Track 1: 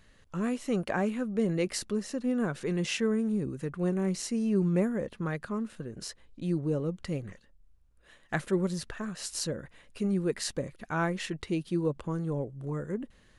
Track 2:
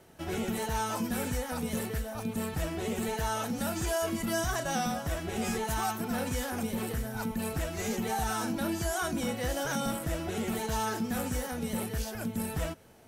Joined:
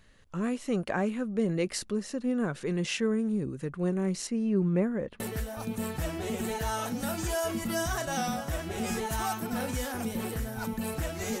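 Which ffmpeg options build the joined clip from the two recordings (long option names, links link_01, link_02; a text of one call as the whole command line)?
ffmpeg -i cue0.wav -i cue1.wav -filter_complex "[0:a]asettb=1/sr,asplit=3[link_01][link_02][link_03];[link_01]atrim=end=4.274[link_04];[link_02]atrim=start=4.27:end=5.2,asetpts=PTS-STARTPTS,afade=type=in:duration=0.004:curve=qsin,afade=type=out:start_time=0.926:duration=0.004:curve=qsin,bass=frequency=250:gain=0,treble=frequency=4000:gain=-10[link_05];[link_03]atrim=start=5.196[link_06];[link_04][link_05]acrossfade=duration=0.004:curve1=hsin:curve2=qsin[link_07];[link_07][link_06]acrossfade=duration=0.004:curve1=qsin:curve2=hsin,apad=whole_dur=11.4,atrim=end=11.4,atrim=end=5.202[link_08];[1:a]atrim=start=1.778:end=7.98[link_09];[link_08][link_09]acrossfade=duration=0.004:curve1=hsin:curve2=hsin" out.wav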